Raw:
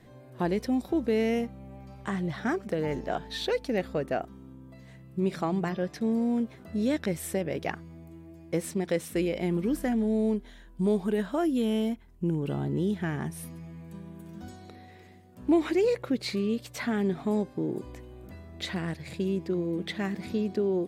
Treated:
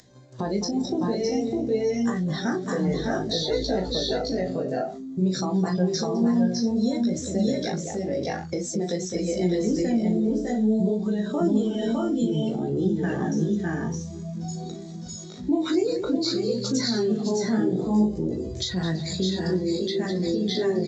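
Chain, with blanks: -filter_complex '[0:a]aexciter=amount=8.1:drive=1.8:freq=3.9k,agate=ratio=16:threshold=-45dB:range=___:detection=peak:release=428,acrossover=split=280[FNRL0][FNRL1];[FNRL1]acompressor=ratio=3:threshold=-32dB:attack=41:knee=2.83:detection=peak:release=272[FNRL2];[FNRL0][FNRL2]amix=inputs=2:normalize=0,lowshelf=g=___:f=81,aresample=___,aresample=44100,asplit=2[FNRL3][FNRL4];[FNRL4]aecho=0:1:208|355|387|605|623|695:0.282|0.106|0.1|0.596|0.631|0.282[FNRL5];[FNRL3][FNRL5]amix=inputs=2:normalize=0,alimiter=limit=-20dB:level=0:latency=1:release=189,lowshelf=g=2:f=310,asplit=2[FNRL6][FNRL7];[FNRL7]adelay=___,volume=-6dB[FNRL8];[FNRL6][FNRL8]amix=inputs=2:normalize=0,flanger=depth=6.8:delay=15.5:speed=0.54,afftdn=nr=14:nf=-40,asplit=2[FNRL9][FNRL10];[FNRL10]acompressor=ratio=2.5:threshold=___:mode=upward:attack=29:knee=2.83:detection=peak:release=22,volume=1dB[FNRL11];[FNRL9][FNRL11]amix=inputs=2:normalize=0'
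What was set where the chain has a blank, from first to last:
-29dB, -7, 16000, 38, -34dB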